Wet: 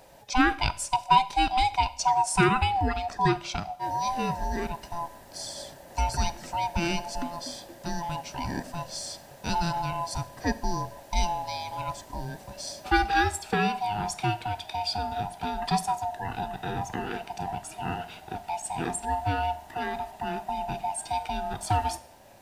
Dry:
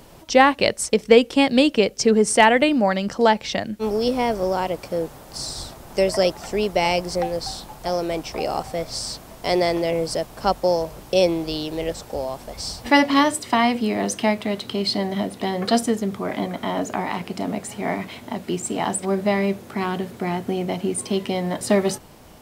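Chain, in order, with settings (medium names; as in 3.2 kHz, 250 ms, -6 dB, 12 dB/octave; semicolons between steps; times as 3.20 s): split-band scrambler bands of 500 Hz; Schroeder reverb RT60 0.6 s, combs from 31 ms, DRR 16 dB; trim -7 dB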